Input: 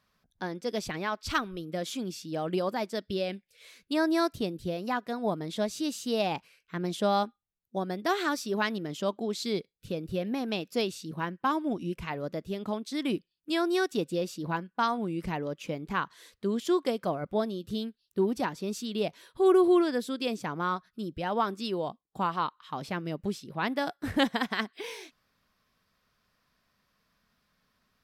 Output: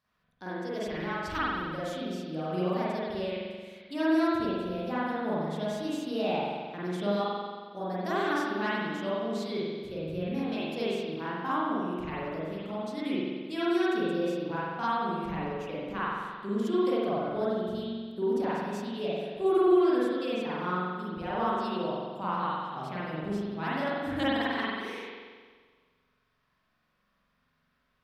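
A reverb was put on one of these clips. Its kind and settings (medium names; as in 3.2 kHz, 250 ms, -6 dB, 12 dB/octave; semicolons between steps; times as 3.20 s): spring tank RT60 1.6 s, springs 44 ms, chirp 55 ms, DRR -9.5 dB; trim -10 dB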